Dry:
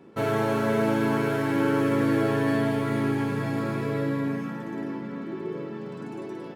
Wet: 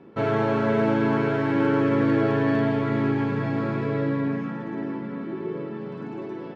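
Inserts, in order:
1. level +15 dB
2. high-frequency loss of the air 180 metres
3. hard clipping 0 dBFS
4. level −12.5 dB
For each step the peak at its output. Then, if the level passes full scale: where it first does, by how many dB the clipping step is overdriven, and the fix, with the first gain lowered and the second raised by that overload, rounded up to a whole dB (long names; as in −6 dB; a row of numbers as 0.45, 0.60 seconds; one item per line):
+3.5, +3.0, 0.0, −12.5 dBFS
step 1, 3.0 dB
step 1 +12 dB, step 4 −9.5 dB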